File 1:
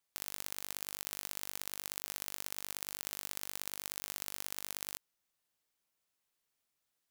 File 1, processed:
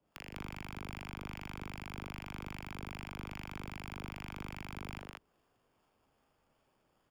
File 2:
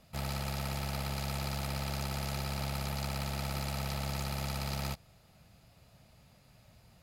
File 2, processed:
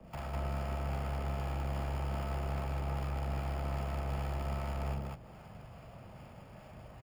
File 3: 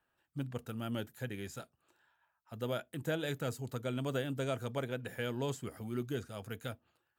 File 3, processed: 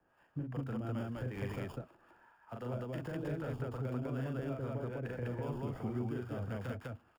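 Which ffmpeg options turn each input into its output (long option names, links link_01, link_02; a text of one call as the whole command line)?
ffmpeg -i in.wav -filter_complex "[0:a]equalizer=frequency=630:width_type=o:width=2.3:gain=4,acrossover=split=480|2600[link_01][link_02][link_03];[link_03]acrusher=samples=22:mix=1:aa=0.000001[link_04];[link_01][link_02][link_04]amix=inputs=3:normalize=0,alimiter=level_in=5.5dB:limit=-24dB:level=0:latency=1:release=133,volume=-5.5dB,acrossover=split=580[link_05][link_06];[link_05]aeval=exprs='val(0)*(1-0.7/2+0.7/2*cos(2*PI*2.5*n/s))':channel_layout=same[link_07];[link_06]aeval=exprs='val(0)*(1-0.7/2-0.7/2*cos(2*PI*2.5*n/s))':channel_layout=same[link_08];[link_07][link_08]amix=inputs=2:normalize=0,acrossover=split=100|250[link_09][link_10][link_11];[link_09]acompressor=threshold=-50dB:ratio=4[link_12];[link_10]acompressor=threshold=-53dB:ratio=4[link_13];[link_11]acompressor=threshold=-54dB:ratio=4[link_14];[link_12][link_13][link_14]amix=inputs=3:normalize=0,aecho=1:1:40.82|201.2:0.708|1,volume=8dB" out.wav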